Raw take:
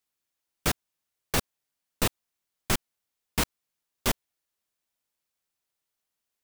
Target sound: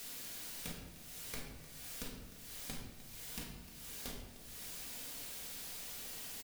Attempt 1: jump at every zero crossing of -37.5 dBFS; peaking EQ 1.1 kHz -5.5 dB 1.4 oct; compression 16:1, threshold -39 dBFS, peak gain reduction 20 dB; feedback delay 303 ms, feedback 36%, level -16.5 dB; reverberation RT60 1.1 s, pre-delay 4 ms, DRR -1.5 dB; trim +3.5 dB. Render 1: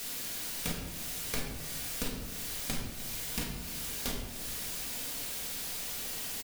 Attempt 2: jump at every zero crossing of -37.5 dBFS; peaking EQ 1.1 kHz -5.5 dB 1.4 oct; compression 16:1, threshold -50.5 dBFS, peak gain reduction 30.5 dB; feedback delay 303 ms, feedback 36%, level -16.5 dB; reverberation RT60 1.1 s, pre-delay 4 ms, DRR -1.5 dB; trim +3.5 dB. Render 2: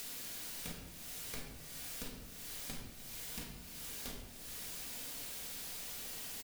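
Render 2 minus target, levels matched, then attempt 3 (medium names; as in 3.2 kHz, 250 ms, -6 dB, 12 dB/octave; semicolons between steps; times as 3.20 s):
jump at every zero crossing: distortion +7 dB
jump at every zero crossing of -45 dBFS; peaking EQ 1.1 kHz -5.5 dB 1.4 oct; compression 16:1, threshold -50.5 dBFS, peak gain reduction 30.5 dB; feedback delay 303 ms, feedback 36%, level -16.5 dB; reverberation RT60 1.1 s, pre-delay 4 ms, DRR -1.5 dB; trim +3.5 dB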